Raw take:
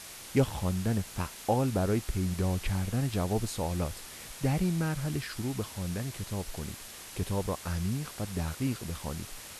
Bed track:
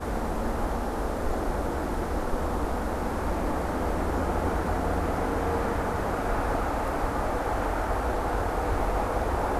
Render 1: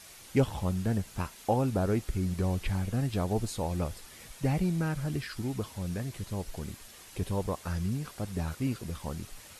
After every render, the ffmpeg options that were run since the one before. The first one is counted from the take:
-af "afftdn=nr=7:nf=-46"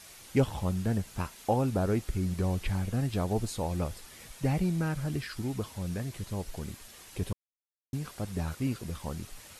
-filter_complex "[0:a]asplit=3[a][b][c];[a]atrim=end=7.33,asetpts=PTS-STARTPTS,afade=t=out:st=7.326:d=0.004:c=hsin[d];[b]atrim=start=7.33:end=7.93,asetpts=PTS-STARTPTS,volume=0[e];[c]atrim=start=7.93,asetpts=PTS-STARTPTS,afade=t=in:d=0.004:c=hsin[f];[d][e][f]concat=n=3:v=0:a=1"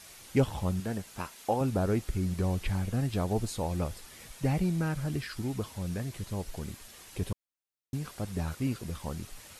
-filter_complex "[0:a]asettb=1/sr,asplit=3[a][b][c];[a]atrim=end=0.804[d];[b]atrim=start=0.8:end=1.61,asetpts=PTS-STARTPTS,afade=t=in:d=0.004:c=qsin,afade=t=out:st=0.806:d=0.004:c=qsin,lowshelf=f=160:g=-12[e];[c]atrim=start=1.606[f];[d][e]acrossfade=d=0.004:c1=hsin:c2=qsin[g];[g][f]acrossfade=d=0.004:c1=qsin:c2=hsin"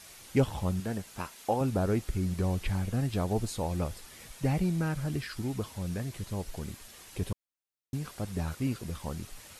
-af anull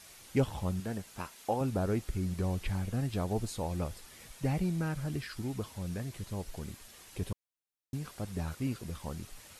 -af "volume=-3dB"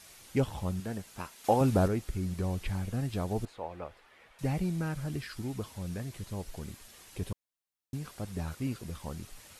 -filter_complex "[0:a]asettb=1/sr,asplit=3[a][b][c];[a]atrim=end=1.444[d];[b]atrim=start=1.44:end=1.88,asetpts=PTS-STARTPTS,afade=t=in:d=0.004:c=qsin,afade=t=out:st=0.436:d=0.004:c=qsin,acontrast=67[e];[c]atrim=start=1.876[f];[d][e]acrossfade=d=0.004:c1=hsin:c2=qsin[g];[g][f]acrossfade=d=0.004:c1=qsin:c2=hsin,asettb=1/sr,asplit=3[h][i][j];[h]atrim=end=3.454[k];[i]atrim=start=3.45:end=4.39,asetpts=PTS-STARTPTS,afade=t=in:d=0.004:c=qsin,afade=t=out:st=0.936:d=0.004:c=qsin,acrossover=split=400 2900:gain=0.178 1 0.0708[l][m][n];[l][m][n]amix=inputs=3:normalize=0[o];[j]atrim=start=4.386[p];[k][o]acrossfade=d=0.004:c1=hsin:c2=qsin[q];[q][p]acrossfade=d=0.004:c1=qsin:c2=hsin"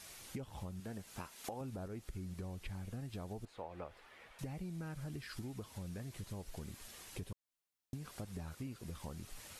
-af "alimiter=limit=-23.5dB:level=0:latency=1:release=352,acompressor=threshold=-42dB:ratio=6"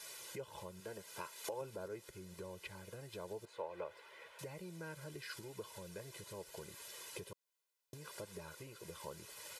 -af "highpass=240,aecho=1:1:2:0.9"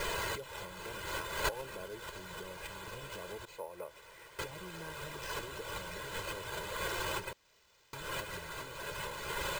-af "aexciter=amount=5.4:drive=8.1:freq=6.4k,acrusher=samples=4:mix=1:aa=0.000001"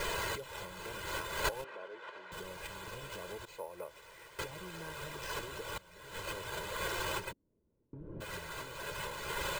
-filter_complex "[0:a]asettb=1/sr,asplit=3[a][b][c];[a]atrim=end=1.644[d];[b]atrim=start=1.64:end=2.32,asetpts=PTS-STARTPTS,afade=t=in:d=0.004:c=qsin,afade=t=out:st=0.676:d=0.004:c=qsin,highpass=440,lowpass=2.4k[e];[c]atrim=start=2.316[f];[d][e]acrossfade=d=0.004:c1=hsin:c2=qsin[g];[g][f]acrossfade=d=0.004:c1=qsin:c2=hsin,asplit=3[h][i][j];[h]afade=t=out:st=7.31:d=0.02[k];[i]lowpass=f=270:t=q:w=3.2,afade=t=in:st=7.31:d=0.02,afade=t=out:st=8.2:d=0.02[l];[j]afade=t=in:st=8.2:d=0.02[m];[k][l][m]amix=inputs=3:normalize=0,asplit=2[n][o];[n]atrim=end=5.78,asetpts=PTS-STARTPTS,afade=t=out:st=5.776:d=0.004:c=hsin:silence=0.133352[p];[o]atrim=start=5.78,asetpts=PTS-STARTPTS,afade=t=in:d=0.5:c=qua:silence=0.133352[q];[p][q]concat=n=2:v=0:a=1"

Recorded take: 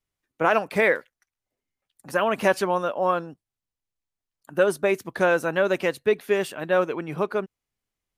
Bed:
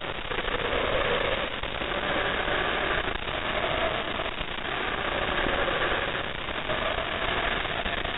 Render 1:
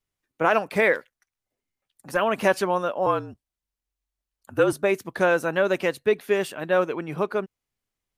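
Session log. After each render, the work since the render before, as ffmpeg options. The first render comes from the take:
-filter_complex "[0:a]asplit=3[a][b][c];[a]afade=t=out:st=0.93:d=0.02[d];[b]aeval=exprs='clip(val(0),-1,0.0891)':c=same,afade=t=in:st=0.93:d=0.02,afade=t=out:st=2.15:d=0.02[e];[c]afade=t=in:st=2.15:d=0.02[f];[d][e][f]amix=inputs=3:normalize=0,asettb=1/sr,asplit=3[g][h][i];[g]atrim=end=3.064[j];[h]atrim=start=3.06:end=4.73,asetpts=PTS-STARTPTS,afade=t=in:d=0.004:c=qsin,afade=t=out:st=1.666:d=0.004:c=qsin,afreqshift=-48[k];[i]atrim=start=4.726[l];[j][k]acrossfade=d=0.004:c1=hsin:c2=qsin[m];[m][l]acrossfade=d=0.004:c1=qsin:c2=hsin"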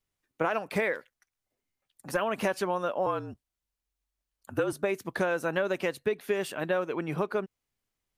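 -af "acompressor=threshold=-25dB:ratio=6"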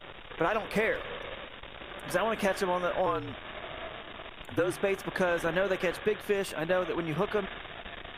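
-filter_complex "[1:a]volume=-13.5dB[a];[0:a][a]amix=inputs=2:normalize=0"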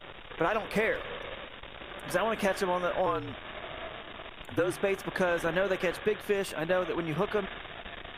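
-af anull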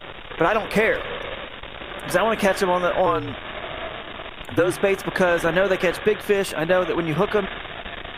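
-af "volume=9dB"

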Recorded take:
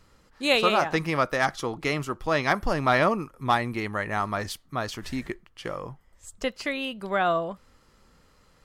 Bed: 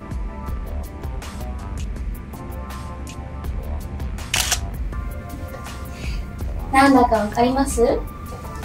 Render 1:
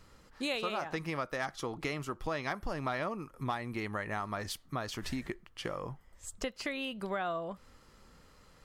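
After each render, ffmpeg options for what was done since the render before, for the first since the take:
-af "acompressor=threshold=-34dB:ratio=4"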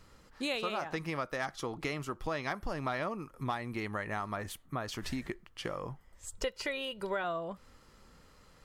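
-filter_complex "[0:a]asettb=1/sr,asplit=3[a][b][c];[a]atrim=end=4.364[d];[b]atrim=start=4.36:end=4.88,asetpts=PTS-STARTPTS,afade=t=in:d=0.004:c=qsin,afade=t=out:st=0.516:d=0.004:c=qsin,equalizer=f=4.9k:w=1.8:g=-12[e];[c]atrim=start=4.876[f];[d][e]acrossfade=d=0.004:c1=hsin:c2=qsin[g];[g][f]acrossfade=d=0.004:c1=qsin:c2=hsin,asettb=1/sr,asplit=3[h][i][j];[h]atrim=end=6.324[k];[i]atrim=start=6.32:end=7.24,asetpts=PTS-STARTPTS,afade=t=in:d=0.004:c=qsin,afade=t=out:st=0.916:d=0.004:c=qsin,aecho=1:1:2.1:0.63,atrim=end_sample=40572[l];[j]atrim=start=7.236[m];[k][l]acrossfade=d=0.004:c1=hsin:c2=qsin[n];[n][m]acrossfade=d=0.004:c1=qsin:c2=hsin"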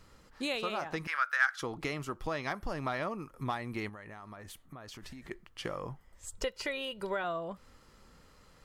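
-filter_complex "[0:a]asettb=1/sr,asplit=3[a][b][c];[a]atrim=end=1.074[d];[b]atrim=start=1.07:end=1.62,asetpts=PTS-STARTPTS,afade=t=in:d=0.004:c=qsin,afade=t=out:st=0.546:d=0.004:c=qsin,highpass=f=1.5k:t=q:w=6.8[e];[c]atrim=start=1.616[f];[d][e]acrossfade=d=0.004:c1=hsin:c2=qsin[g];[g][f]acrossfade=d=0.004:c1=qsin:c2=hsin,asettb=1/sr,asplit=3[h][i][j];[h]atrim=end=3.894[k];[i]atrim=start=3.89:end=5.31,asetpts=PTS-STARTPTS,afade=t=in:d=0.004:c=qsin,afade=t=out:st=1.416:d=0.004:c=qsin,acompressor=threshold=-44dB:ratio=6:attack=3.2:release=140:knee=1:detection=peak[l];[j]atrim=start=5.306[m];[k][l]acrossfade=d=0.004:c1=hsin:c2=qsin[n];[n][m]acrossfade=d=0.004:c1=qsin:c2=hsin"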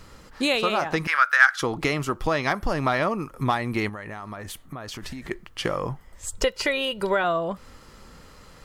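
-af "volume=11.5dB"

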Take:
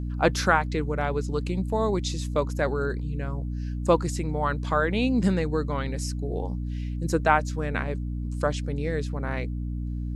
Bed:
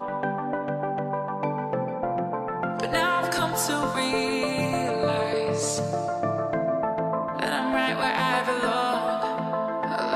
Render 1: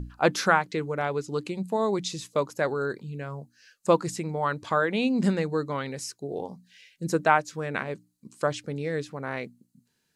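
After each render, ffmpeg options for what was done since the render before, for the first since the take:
-af "bandreject=f=60:t=h:w=6,bandreject=f=120:t=h:w=6,bandreject=f=180:t=h:w=6,bandreject=f=240:t=h:w=6,bandreject=f=300:t=h:w=6"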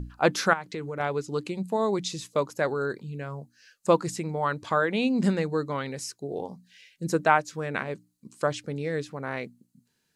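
-filter_complex "[0:a]asettb=1/sr,asplit=3[a][b][c];[a]atrim=end=0.534[d];[b]atrim=start=0.53:end=1,asetpts=PTS-STARTPTS,afade=t=in:d=0.004:c=qsin,afade=t=out:st=0.466:d=0.004:c=qsin,acompressor=threshold=-30dB:ratio=4:attack=3.2:release=140:knee=1:detection=peak[e];[c]atrim=start=0.996[f];[d][e]acrossfade=d=0.004:c1=hsin:c2=qsin[g];[g][f]acrossfade=d=0.004:c1=qsin:c2=hsin"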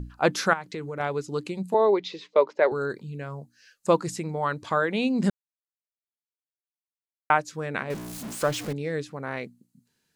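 -filter_complex "[0:a]asettb=1/sr,asplit=3[a][b][c];[a]atrim=end=1.744[d];[b]atrim=start=1.74:end=2.72,asetpts=PTS-STARTPTS,afade=t=in:d=0.004:c=qsin,afade=t=out:st=0.976:d=0.004:c=qsin,highpass=f=240:w=0.5412,highpass=f=240:w=1.3066,equalizer=f=280:t=q:w=4:g=-6,equalizer=f=410:t=q:w=4:g=8,equalizer=f=600:t=q:w=4:g=6,equalizer=f=920:t=q:w=4:g=6,equalizer=f=2.1k:t=q:w=4:g=6,lowpass=f=4.1k:w=0.5412,lowpass=f=4.1k:w=1.3066[e];[c]atrim=start=2.716[f];[d][e]acrossfade=d=0.004:c1=hsin:c2=qsin[g];[g][f]acrossfade=d=0.004:c1=qsin:c2=hsin,asettb=1/sr,asplit=3[h][i][j];[h]atrim=end=7.904[k];[i]atrim=start=7.9:end=8.73,asetpts=PTS-STARTPTS,afade=t=in:d=0.004:c=qsin,afade=t=out:st=0.826:d=0.004:c=qsin,aeval=exprs='val(0)+0.5*0.0266*sgn(val(0))':c=same[l];[j]atrim=start=8.726[m];[k][l]acrossfade=d=0.004:c1=hsin:c2=qsin[n];[n][m]acrossfade=d=0.004:c1=qsin:c2=hsin,asplit=3[o][p][q];[o]atrim=end=5.3,asetpts=PTS-STARTPTS,afade=t=out:st=5.296:d=0.004:c=hsin[r];[p]atrim=start=5.3:end=7.3,asetpts=PTS-STARTPTS,volume=0[s];[q]atrim=start=7.3,asetpts=PTS-STARTPTS,afade=t=in:d=0.004:c=hsin[t];[r][s][t]concat=n=3:v=0:a=1"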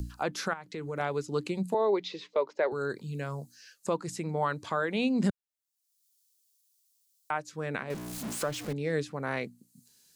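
-filter_complex "[0:a]acrossover=split=140|1800|4200[a][b][c][d];[d]acompressor=mode=upward:threshold=-49dB:ratio=2.5[e];[a][b][c][e]amix=inputs=4:normalize=0,alimiter=limit=-17.5dB:level=0:latency=1:release=493"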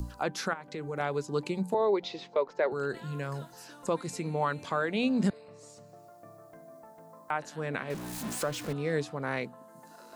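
-filter_complex "[1:a]volume=-25.5dB[a];[0:a][a]amix=inputs=2:normalize=0"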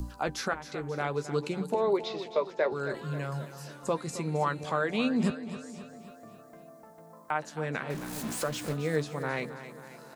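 -filter_complex "[0:a]asplit=2[a][b];[b]adelay=13,volume=-10.5dB[c];[a][c]amix=inputs=2:normalize=0,asplit=2[d][e];[e]aecho=0:1:268|536|804|1072|1340|1608:0.237|0.128|0.0691|0.0373|0.0202|0.0109[f];[d][f]amix=inputs=2:normalize=0"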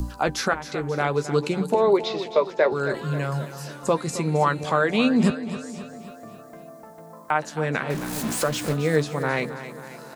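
-af "volume=8dB"

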